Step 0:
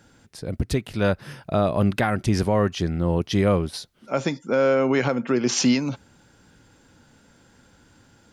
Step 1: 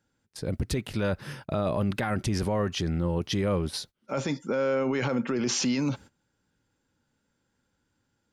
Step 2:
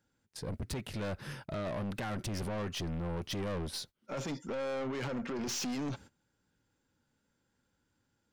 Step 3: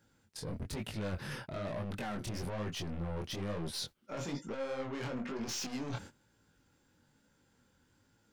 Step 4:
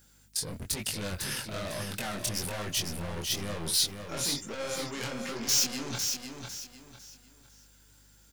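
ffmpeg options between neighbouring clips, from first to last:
-af "agate=range=-20dB:threshold=-44dB:ratio=16:detection=peak,bandreject=f=690:w=12,alimiter=limit=-19.5dB:level=0:latency=1:release=14"
-af "aeval=exprs='(tanh(35.5*val(0)+0.2)-tanh(0.2))/35.5':c=same,volume=-2.5dB"
-af "areverse,acompressor=threshold=-45dB:ratio=6,areverse,flanger=delay=18:depth=7.5:speed=1.1,volume=10.5dB"
-af "aeval=exprs='val(0)+0.000631*(sin(2*PI*50*n/s)+sin(2*PI*2*50*n/s)/2+sin(2*PI*3*50*n/s)/3+sin(2*PI*4*50*n/s)/4+sin(2*PI*5*50*n/s)/5)':c=same,aecho=1:1:502|1004|1506|2008:0.501|0.155|0.0482|0.0149,crystalizer=i=6:c=0"

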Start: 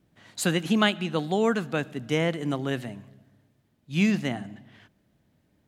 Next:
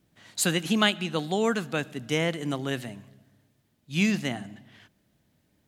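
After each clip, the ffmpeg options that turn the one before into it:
-af "highshelf=f=2.7k:g=7.5,volume=-2dB"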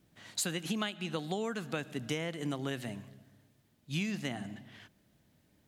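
-af "acompressor=threshold=-31dB:ratio=10"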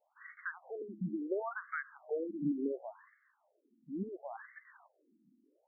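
-af "afftfilt=real='re*between(b*sr/1024,240*pow(1600/240,0.5+0.5*sin(2*PI*0.71*pts/sr))/1.41,240*pow(1600/240,0.5+0.5*sin(2*PI*0.71*pts/sr))*1.41)':imag='im*between(b*sr/1024,240*pow(1600/240,0.5+0.5*sin(2*PI*0.71*pts/sr))/1.41,240*pow(1600/240,0.5+0.5*sin(2*PI*0.71*pts/sr))*1.41)':win_size=1024:overlap=0.75,volume=4.5dB"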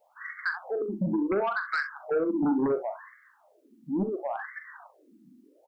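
-af "aeval=exprs='0.0631*(cos(1*acos(clip(val(0)/0.0631,-1,1)))-cos(1*PI/2))+0.00126*(cos(2*acos(clip(val(0)/0.0631,-1,1)))-cos(2*PI/2))+0.00141*(cos(4*acos(clip(val(0)/0.0631,-1,1)))-cos(4*PI/2))+0.0224*(cos(5*acos(clip(val(0)/0.0631,-1,1)))-cos(5*PI/2))+0.000794*(cos(6*acos(clip(val(0)/0.0631,-1,1)))-cos(6*PI/2))':c=same,aecho=1:1:41|65:0.299|0.188,volume=4dB"

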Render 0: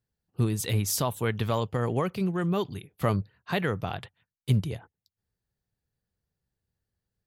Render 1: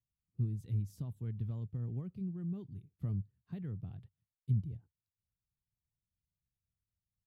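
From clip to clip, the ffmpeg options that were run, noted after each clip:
-af "firequalizer=gain_entry='entry(120,0);entry(530,-23);entry(990,-27)':delay=0.05:min_phase=1,volume=-7dB"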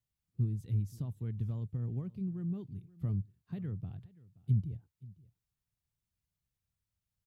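-af "aecho=1:1:527:0.0841,volume=2.5dB"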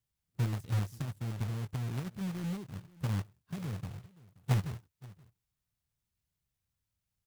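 -af "acrusher=bits=2:mode=log:mix=0:aa=0.000001"

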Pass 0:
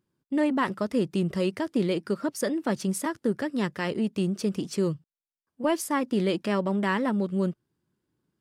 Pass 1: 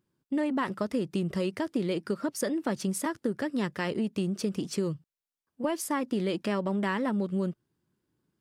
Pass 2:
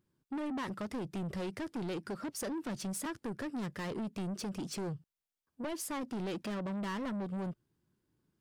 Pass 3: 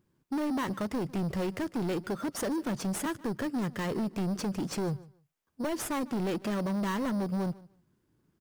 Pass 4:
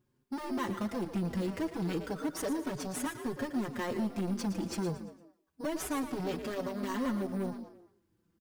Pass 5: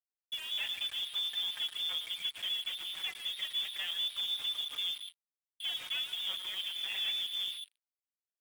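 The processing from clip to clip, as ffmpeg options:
-af "acompressor=threshold=-25dB:ratio=6"
-af "lowshelf=f=80:g=7.5,asoftclip=type=tanh:threshold=-32.5dB,volume=-2dB"
-filter_complex "[0:a]aecho=1:1:150|300:0.0891|0.016,asplit=2[a][b];[b]acrusher=samples=9:mix=1:aa=0.000001,volume=-4.5dB[c];[a][c]amix=inputs=2:normalize=0,volume=2.5dB"
-filter_complex "[0:a]asplit=2[a][b];[b]asplit=4[c][d][e][f];[c]adelay=114,afreqshift=56,volume=-10.5dB[g];[d]adelay=228,afreqshift=112,volume=-18.7dB[h];[e]adelay=342,afreqshift=168,volume=-26.9dB[i];[f]adelay=456,afreqshift=224,volume=-35dB[j];[g][h][i][j]amix=inputs=4:normalize=0[k];[a][k]amix=inputs=2:normalize=0,asplit=2[l][m];[m]adelay=5.1,afreqshift=-0.29[n];[l][n]amix=inputs=2:normalize=1"
-af "lowpass=f=3.1k:t=q:w=0.5098,lowpass=f=3.1k:t=q:w=0.6013,lowpass=f=3.1k:t=q:w=0.9,lowpass=f=3.1k:t=q:w=2.563,afreqshift=-3700,acrusher=bits=6:mix=0:aa=0.5,volume=-2.5dB"

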